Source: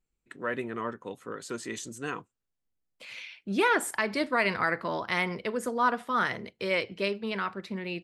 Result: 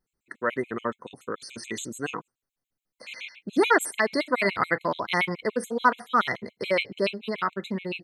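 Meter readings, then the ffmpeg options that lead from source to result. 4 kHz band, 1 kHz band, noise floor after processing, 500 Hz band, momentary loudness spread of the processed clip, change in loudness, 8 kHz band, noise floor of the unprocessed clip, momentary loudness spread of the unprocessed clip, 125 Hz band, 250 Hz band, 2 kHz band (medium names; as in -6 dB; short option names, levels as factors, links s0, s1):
+2.5 dB, +3.0 dB, under -85 dBFS, +4.0 dB, 15 LU, +3.0 dB, +2.5 dB, -83 dBFS, 14 LU, +2.0 dB, +3.0 dB, +2.5 dB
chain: -af "lowshelf=f=65:g=-11,afftfilt=real='re*gt(sin(2*PI*7*pts/sr)*(1-2*mod(floor(b*sr/1024/2100),2)),0)':imag='im*gt(sin(2*PI*7*pts/sr)*(1-2*mod(floor(b*sr/1024/2100),2)),0)':win_size=1024:overlap=0.75,volume=2.11"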